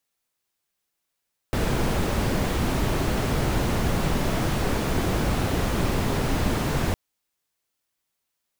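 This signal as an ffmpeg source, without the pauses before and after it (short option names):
-f lavfi -i "anoisesrc=c=brown:a=0.331:d=5.41:r=44100:seed=1"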